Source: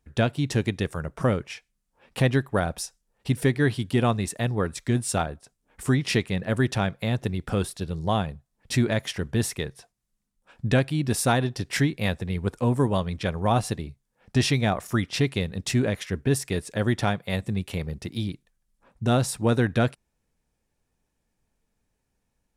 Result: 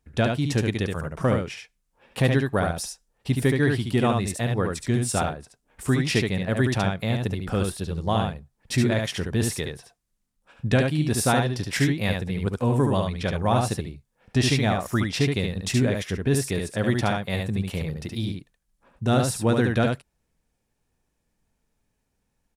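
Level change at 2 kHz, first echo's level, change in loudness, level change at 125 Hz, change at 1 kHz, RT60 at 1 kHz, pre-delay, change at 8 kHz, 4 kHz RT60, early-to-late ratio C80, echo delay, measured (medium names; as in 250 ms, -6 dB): +1.5 dB, -4.0 dB, +1.5 dB, +1.0 dB, +1.5 dB, no reverb, no reverb, +1.5 dB, no reverb, no reverb, 72 ms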